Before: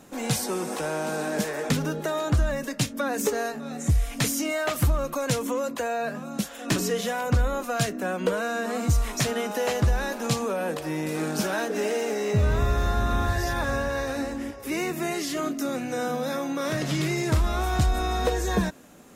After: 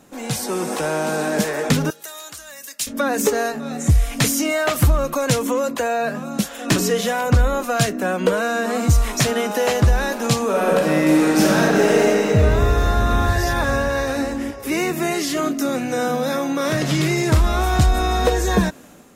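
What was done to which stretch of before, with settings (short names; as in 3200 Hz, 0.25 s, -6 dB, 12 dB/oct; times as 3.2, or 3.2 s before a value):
1.9–2.87 differentiator
10.44–12.05 reverb throw, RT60 2.9 s, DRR -3 dB
whole clip: AGC gain up to 7 dB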